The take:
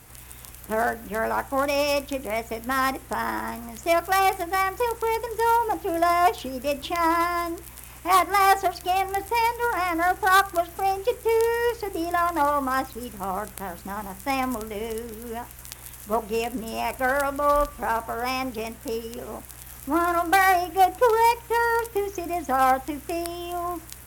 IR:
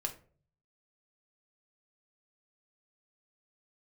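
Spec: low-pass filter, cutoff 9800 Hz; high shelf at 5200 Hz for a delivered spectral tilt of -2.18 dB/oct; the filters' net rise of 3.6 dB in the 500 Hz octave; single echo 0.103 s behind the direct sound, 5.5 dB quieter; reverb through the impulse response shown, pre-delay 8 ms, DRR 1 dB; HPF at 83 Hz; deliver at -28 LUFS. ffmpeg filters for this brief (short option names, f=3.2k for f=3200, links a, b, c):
-filter_complex "[0:a]highpass=83,lowpass=9.8k,equalizer=f=500:t=o:g=4.5,highshelf=f=5.2k:g=-3.5,aecho=1:1:103:0.531,asplit=2[a][b];[1:a]atrim=start_sample=2205,adelay=8[c];[b][c]afir=irnorm=-1:irlink=0,volume=-2dB[d];[a][d]amix=inputs=2:normalize=0,volume=-9dB"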